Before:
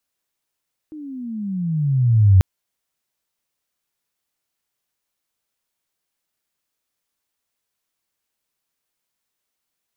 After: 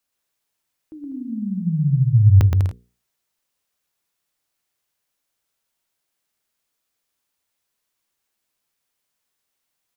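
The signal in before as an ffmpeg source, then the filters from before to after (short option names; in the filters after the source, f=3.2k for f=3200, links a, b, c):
-f lavfi -i "aevalsrc='pow(10,(-7+25*(t/1.49-1))/20)*sin(2*PI*315*1.49/(-21.5*log(2)/12)*(exp(-21.5*log(2)/12*t/1.49)-1))':d=1.49:s=44100"
-filter_complex "[0:a]bandreject=f=60:t=h:w=6,bandreject=f=120:t=h:w=6,bandreject=f=180:t=h:w=6,bandreject=f=240:t=h:w=6,bandreject=f=300:t=h:w=6,bandreject=f=360:t=h:w=6,bandreject=f=420:t=h:w=6,bandreject=f=480:t=h:w=6,asplit=2[a][b];[b]aecho=0:1:120|198|248.7|281.7|303.1:0.631|0.398|0.251|0.158|0.1[c];[a][c]amix=inputs=2:normalize=0"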